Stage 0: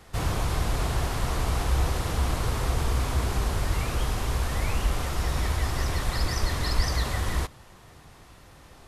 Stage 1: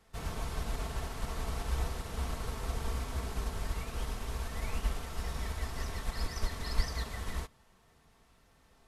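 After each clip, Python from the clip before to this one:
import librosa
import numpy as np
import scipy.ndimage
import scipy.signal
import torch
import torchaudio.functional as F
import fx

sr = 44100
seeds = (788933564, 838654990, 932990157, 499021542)

y = x + 0.41 * np.pad(x, (int(4.5 * sr / 1000.0), 0))[:len(x)]
y = fx.upward_expand(y, sr, threshold_db=-32.0, expansion=1.5)
y = F.gain(torch.from_numpy(y), -6.0).numpy()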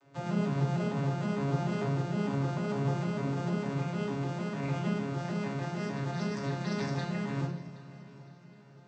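y = fx.vocoder_arp(x, sr, chord='major triad', root=49, every_ms=151)
y = fx.echo_heads(y, sr, ms=257, heads='second and third', feedback_pct=44, wet_db=-20)
y = fx.room_shoebox(y, sr, seeds[0], volume_m3=920.0, walls='furnished', distance_m=2.6)
y = F.gain(torch.from_numpy(y), 6.5).numpy()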